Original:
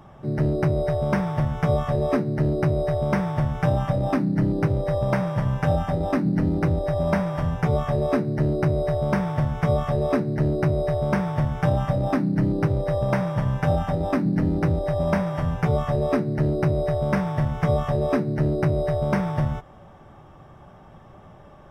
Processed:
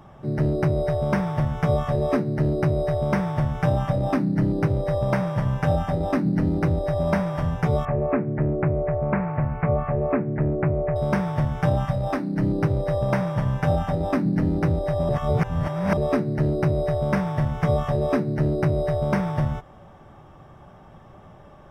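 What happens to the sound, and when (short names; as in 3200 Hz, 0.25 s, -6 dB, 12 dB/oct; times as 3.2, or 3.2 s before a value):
7.85–10.96 elliptic low-pass 2500 Hz
11.85–12.42 bell 470 Hz -> 84 Hz -13.5 dB
15.09–15.97 reverse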